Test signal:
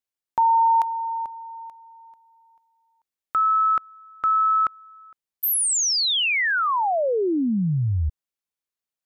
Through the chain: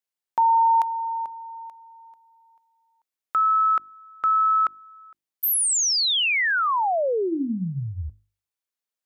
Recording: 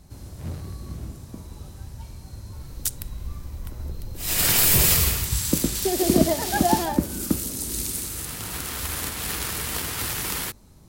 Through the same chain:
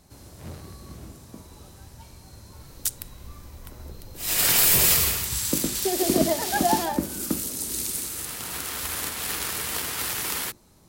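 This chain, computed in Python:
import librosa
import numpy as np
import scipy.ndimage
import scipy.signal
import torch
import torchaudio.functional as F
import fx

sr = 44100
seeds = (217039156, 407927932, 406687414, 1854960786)

y = fx.low_shelf(x, sr, hz=160.0, db=-10.0)
y = fx.hum_notches(y, sr, base_hz=50, count=7)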